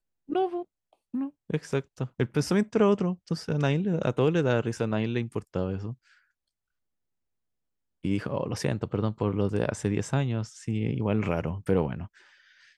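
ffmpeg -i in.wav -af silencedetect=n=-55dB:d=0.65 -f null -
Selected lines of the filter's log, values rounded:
silence_start: 6.19
silence_end: 8.04 | silence_duration: 1.85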